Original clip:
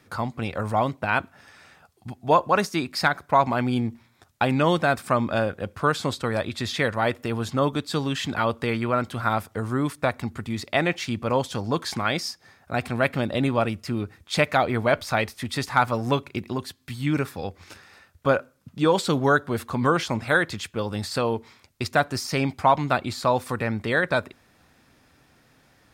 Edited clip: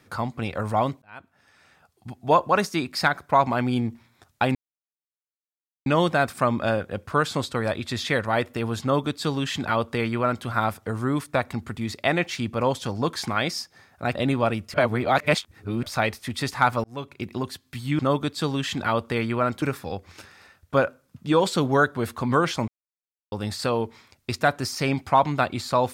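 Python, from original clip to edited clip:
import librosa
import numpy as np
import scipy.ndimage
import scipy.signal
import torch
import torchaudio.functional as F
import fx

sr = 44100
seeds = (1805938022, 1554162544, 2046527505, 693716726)

y = fx.edit(x, sr, fx.fade_in_span(start_s=1.02, length_s=1.28),
    fx.insert_silence(at_s=4.55, length_s=1.31),
    fx.duplicate(start_s=7.51, length_s=1.63, to_s=17.14),
    fx.cut(start_s=12.84, length_s=0.46),
    fx.reverse_span(start_s=13.89, length_s=1.09),
    fx.fade_in_span(start_s=15.99, length_s=0.51),
    fx.silence(start_s=20.2, length_s=0.64), tone=tone)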